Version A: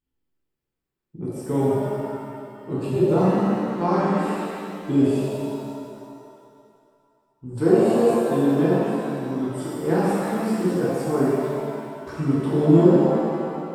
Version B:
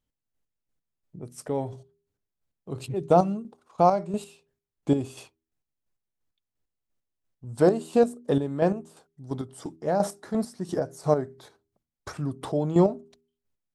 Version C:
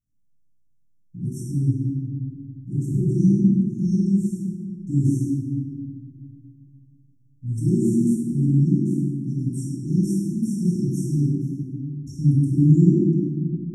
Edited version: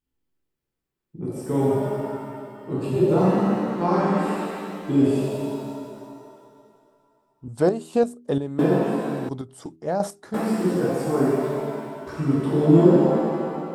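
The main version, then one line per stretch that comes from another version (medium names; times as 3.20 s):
A
7.48–8.59 s: from B
9.29–10.34 s: from B
not used: C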